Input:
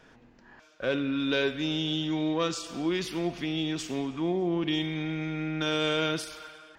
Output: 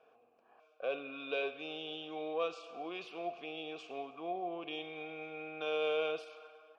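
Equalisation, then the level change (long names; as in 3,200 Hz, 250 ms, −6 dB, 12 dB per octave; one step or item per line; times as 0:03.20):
parametric band 460 Hz +12.5 dB 0.31 octaves
dynamic equaliser 3,200 Hz, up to +5 dB, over −45 dBFS, Q 0.86
formant filter a
+1.0 dB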